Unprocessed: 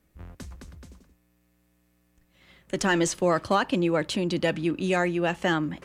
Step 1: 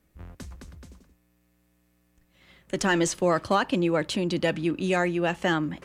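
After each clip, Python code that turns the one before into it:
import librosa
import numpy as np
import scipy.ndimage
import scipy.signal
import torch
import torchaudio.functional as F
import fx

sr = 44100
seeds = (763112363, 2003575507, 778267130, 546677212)

y = x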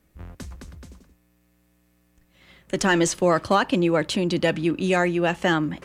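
y = fx.quant_float(x, sr, bits=8)
y = y * 10.0 ** (3.5 / 20.0)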